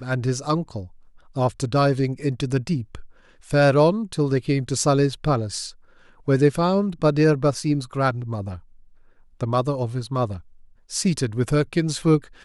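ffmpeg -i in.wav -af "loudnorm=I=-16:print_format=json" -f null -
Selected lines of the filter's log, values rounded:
"input_i" : "-22.5",
"input_tp" : "-6.1",
"input_lra" : "3.2",
"input_thresh" : "-33.3",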